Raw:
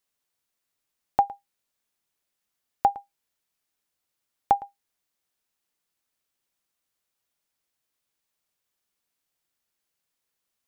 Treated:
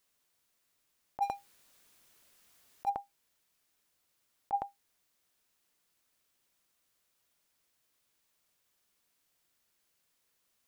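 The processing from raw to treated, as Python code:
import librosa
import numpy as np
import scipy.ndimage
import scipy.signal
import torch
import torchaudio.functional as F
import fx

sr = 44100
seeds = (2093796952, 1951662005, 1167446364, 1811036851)

y = fx.law_mismatch(x, sr, coded='mu', at=(1.21, 2.88), fade=0.02)
y = fx.notch(y, sr, hz=810.0, q=19.0)
y = fx.over_compress(y, sr, threshold_db=-30.0, ratio=-0.5)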